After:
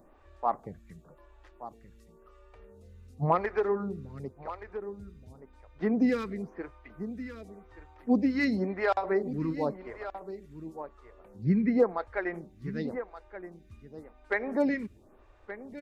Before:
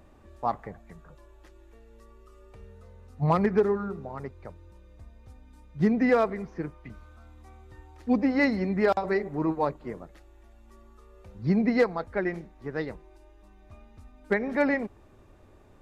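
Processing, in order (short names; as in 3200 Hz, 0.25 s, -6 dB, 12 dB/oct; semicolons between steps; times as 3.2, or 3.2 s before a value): 11.44–11.9 resonant high shelf 2700 Hz -9 dB, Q 1.5; on a send: echo 1.175 s -13 dB; on the sum: photocell phaser 0.93 Hz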